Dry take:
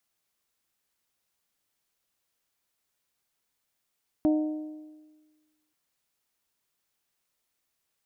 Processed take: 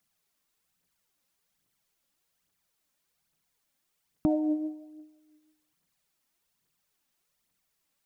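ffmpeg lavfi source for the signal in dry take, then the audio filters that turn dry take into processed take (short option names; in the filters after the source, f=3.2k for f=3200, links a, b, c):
-f lavfi -i "aevalsrc='0.119*pow(10,-3*t/1.4)*sin(2*PI*307*t)+0.0398*pow(10,-3*t/1.137)*sin(2*PI*614*t)+0.0133*pow(10,-3*t/1.077)*sin(2*PI*736.8*t)+0.00447*pow(10,-3*t/1.007)*sin(2*PI*921*t)':d=1.48:s=44100"
-af "equalizer=f=170:w=2.2:g=8.5,aphaser=in_gain=1:out_gain=1:delay=3.9:decay=0.51:speed=1.2:type=triangular"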